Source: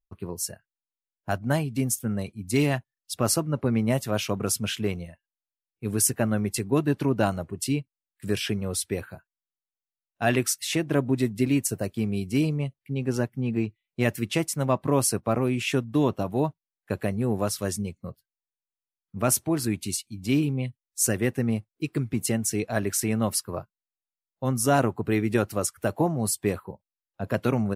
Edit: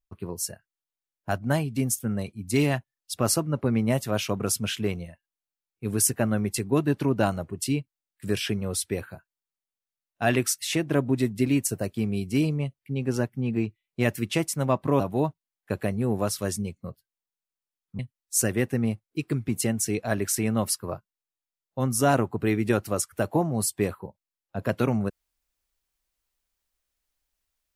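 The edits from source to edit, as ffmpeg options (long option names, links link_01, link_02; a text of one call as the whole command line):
ffmpeg -i in.wav -filter_complex "[0:a]asplit=3[link_01][link_02][link_03];[link_01]atrim=end=15.002[link_04];[link_02]atrim=start=16.198:end=19.192[link_05];[link_03]atrim=start=20.638[link_06];[link_04][link_05]acrossfade=duration=0.004:curve1=hsin:curve2=hsin[link_07];[link_07][link_06]acrossfade=duration=0.004:curve1=hsin:curve2=hsin" out.wav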